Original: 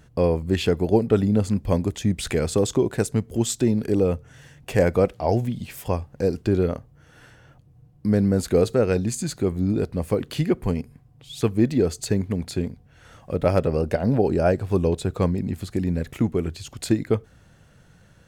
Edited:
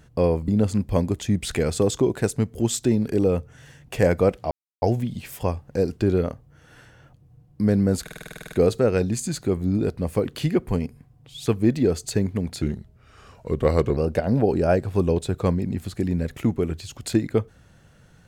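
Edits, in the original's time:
0:00.48–0:01.24: remove
0:05.27: splice in silence 0.31 s
0:08.47: stutter 0.05 s, 11 plays
0:12.57–0:13.73: play speed 86%

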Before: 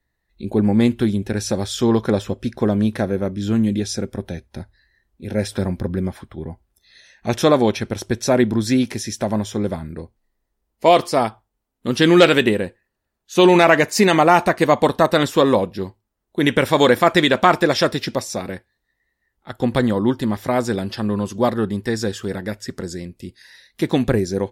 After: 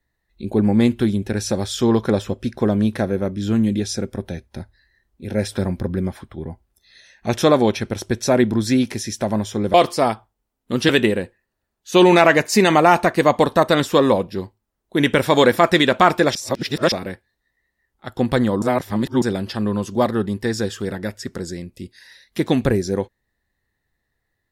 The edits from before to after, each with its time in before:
0:09.74–0:10.89: remove
0:12.04–0:12.32: remove
0:17.78–0:18.35: reverse
0:20.05–0:20.65: reverse

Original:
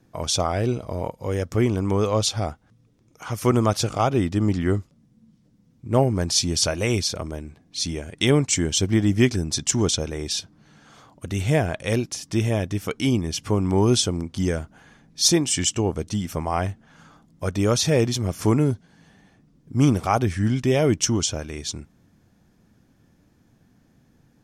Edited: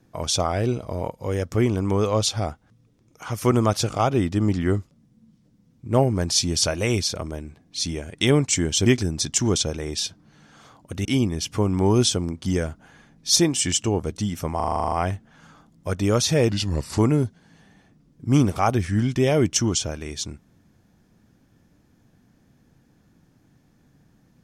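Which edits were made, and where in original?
0:08.86–0:09.19: remove
0:11.38–0:12.97: remove
0:16.48: stutter 0.04 s, 10 plays
0:18.05–0:18.46: play speed 83%

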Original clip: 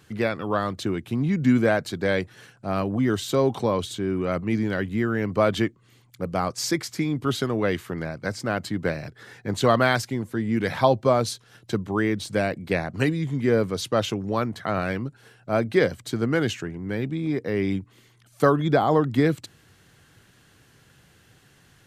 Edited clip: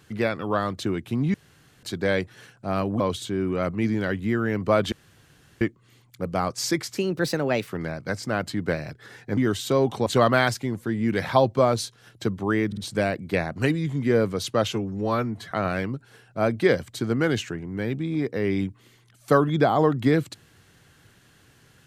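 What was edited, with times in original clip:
0:01.34–0:01.83: fill with room tone
0:03.00–0:03.69: move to 0:09.54
0:05.61: splice in room tone 0.69 s
0:06.97–0:07.84: play speed 124%
0:12.15: stutter 0.05 s, 3 plays
0:14.11–0:14.63: time-stretch 1.5×

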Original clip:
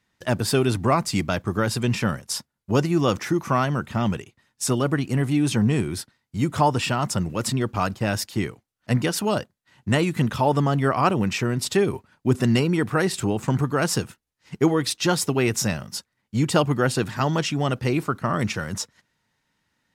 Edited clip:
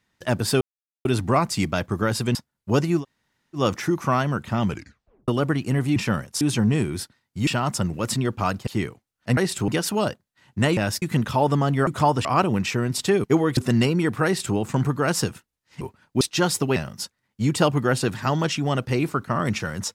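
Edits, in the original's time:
0:00.61: splice in silence 0.44 s
0:01.91–0:02.36: move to 0:05.39
0:03.01: splice in room tone 0.58 s, crossfade 0.10 s
0:04.11: tape stop 0.60 s
0:06.45–0:06.83: move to 0:10.92
0:08.03–0:08.28: move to 0:10.07
0:11.91–0:12.31: swap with 0:14.55–0:14.88
0:12.99–0:13.30: duplicate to 0:08.98
0:15.43–0:15.70: remove

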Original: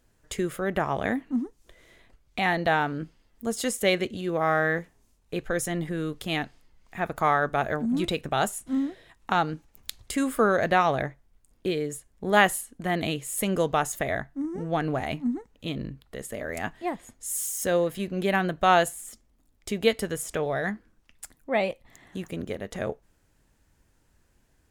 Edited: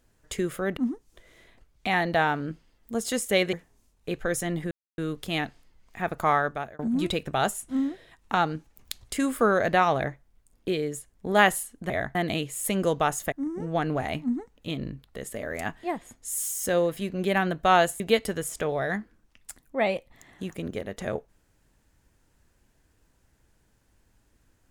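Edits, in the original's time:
0:00.77–0:01.29: remove
0:04.05–0:04.78: remove
0:05.96: splice in silence 0.27 s
0:07.34–0:07.77: fade out
0:14.05–0:14.30: move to 0:12.88
0:18.98–0:19.74: remove

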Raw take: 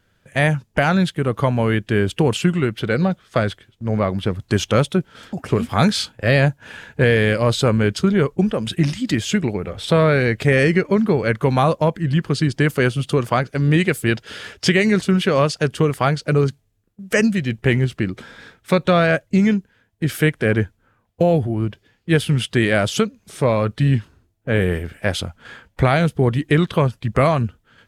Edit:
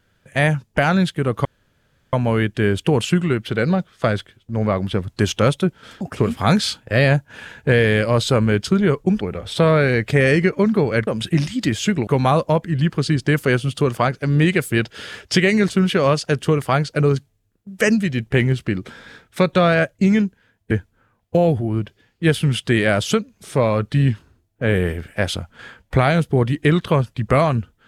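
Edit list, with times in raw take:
0:01.45: splice in room tone 0.68 s
0:08.53–0:09.53: move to 0:11.39
0:20.03–0:20.57: remove

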